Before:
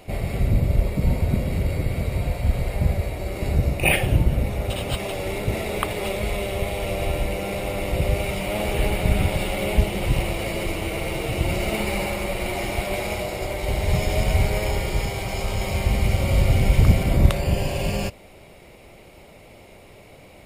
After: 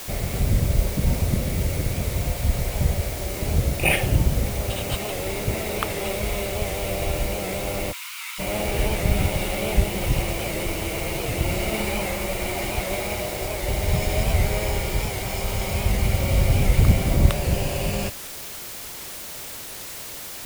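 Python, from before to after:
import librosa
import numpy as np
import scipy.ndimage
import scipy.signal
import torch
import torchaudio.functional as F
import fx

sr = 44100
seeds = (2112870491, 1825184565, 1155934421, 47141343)

y = fx.dmg_noise_colour(x, sr, seeds[0], colour='white', level_db=-35.0)
y = fx.cheby_ripple_highpass(y, sr, hz=960.0, ripple_db=3, at=(7.91, 8.38), fade=0.02)
y = fx.record_warp(y, sr, rpm=78.0, depth_cents=100.0)
y = y * 10.0 ** (-1.0 / 20.0)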